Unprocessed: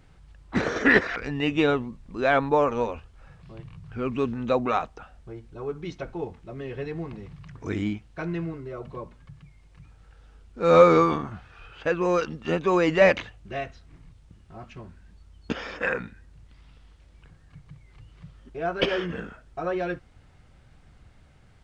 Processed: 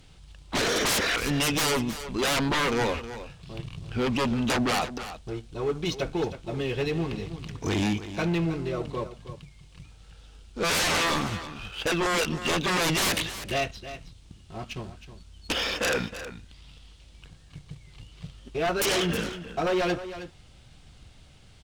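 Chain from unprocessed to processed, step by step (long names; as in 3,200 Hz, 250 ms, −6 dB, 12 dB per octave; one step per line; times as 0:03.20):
high shelf with overshoot 2,400 Hz +8 dB, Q 1.5
leveller curve on the samples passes 1
sine wavefolder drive 8 dB, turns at −13 dBFS
on a send: single-tap delay 317 ms −12.5 dB
on the sum: level −8.5 dB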